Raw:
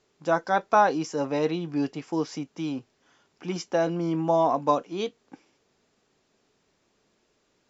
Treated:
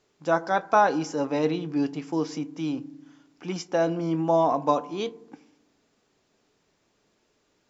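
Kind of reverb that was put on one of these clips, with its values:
feedback delay network reverb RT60 0.78 s, low-frequency decay 1.6×, high-frequency decay 0.3×, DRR 15 dB

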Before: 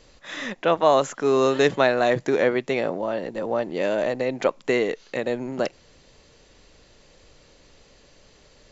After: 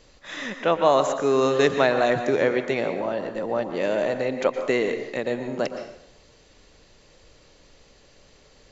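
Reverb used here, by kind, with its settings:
dense smooth reverb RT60 0.77 s, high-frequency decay 0.8×, pre-delay 105 ms, DRR 7.5 dB
level −1 dB

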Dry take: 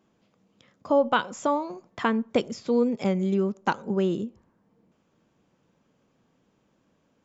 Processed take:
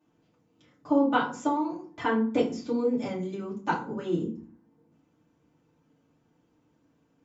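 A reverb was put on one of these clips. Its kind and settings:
feedback delay network reverb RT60 0.41 s, low-frequency decay 1.6×, high-frequency decay 0.65×, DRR −7.5 dB
level −11 dB

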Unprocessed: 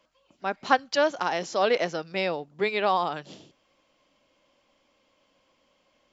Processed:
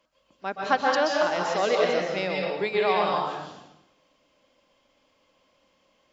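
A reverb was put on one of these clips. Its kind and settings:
dense smooth reverb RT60 0.9 s, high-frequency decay 0.9×, pre-delay 115 ms, DRR −1.5 dB
level −2.5 dB

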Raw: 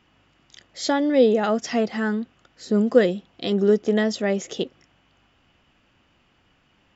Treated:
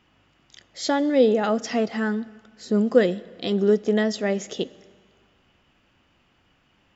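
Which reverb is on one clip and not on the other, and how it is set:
dense smooth reverb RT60 1.8 s, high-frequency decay 0.85×, DRR 19 dB
level −1 dB

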